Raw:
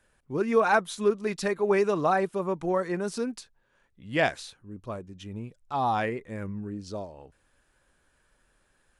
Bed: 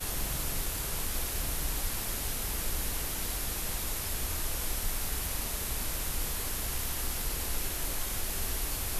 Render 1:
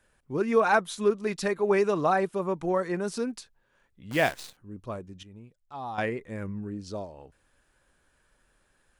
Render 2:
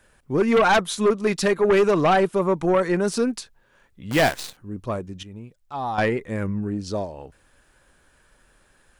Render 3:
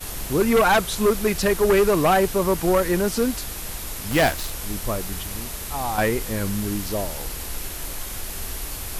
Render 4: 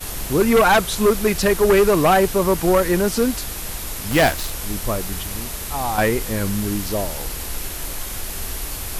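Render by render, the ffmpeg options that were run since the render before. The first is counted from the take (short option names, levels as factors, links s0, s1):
-filter_complex "[0:a]asettb=1/sr,asplit=3[s0][s1][s2];[s0]atrim=end=4.114[s3];[s1]atrim=start=4.11:end=4.57,asetpts=PTS-STARTPTS,afade=t=in:d=0.004:c=qsin,afade=t=out:st=0.456:d=0.004:c=qsin,acrusher=bits=7:dc=4:mix=0:aa=0.000001[s4];[s2]atrim=start=4.566[s5];[s3][s4]acrossfade=d=0.004:c1=hsin:c2=qsin[s6];[s6][s5]acrossfade=d=0.004:c1=qsin:c2=hsin,asplit=3[s7][s8][s9];[s7]atrim=end=5.232[s10];[s8]atrim=start=5.228:end=5.982,asetpts=PTS-STARTPTS,volume=0.299[s11];[s9]atrim=start=5.978[s12];[s10][s11]acrossfade=d=0.004:c1=hsin:c2=hsin[s13];[s13][s12]acrossfade=d=0.004:c1=hsin:c2=hsin"
-af "aeval=exprs='0.316*(cos(1*acos(clip(val(0)/0.316,-1,1)))-cos(1*PI/2))+0.112*(cos(5*acos(clip(val(0)/0.316,-1,1)))-cos(5*PI/2))+0.0141*(cos(8*acos(clip(val(0)/0.316,-1,1)))-cos(8*PI/2))':c=same"
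-filter_complex "[1:a]volume=1.26[s0];[0:a][s0]amix=inputs=2:normalize=0"
-af "volume=1.41"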